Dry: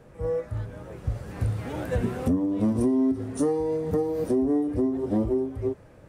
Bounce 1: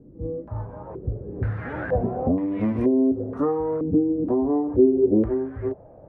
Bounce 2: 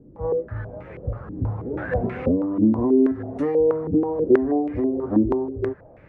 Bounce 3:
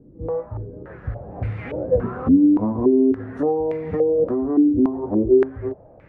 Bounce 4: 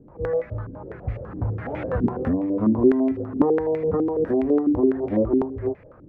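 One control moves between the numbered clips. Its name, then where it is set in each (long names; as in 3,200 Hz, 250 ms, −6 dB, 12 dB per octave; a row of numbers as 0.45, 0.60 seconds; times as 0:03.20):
low-pass on a step sequencer, speed: 2.1, 6.2, 3.5, 12 Hertz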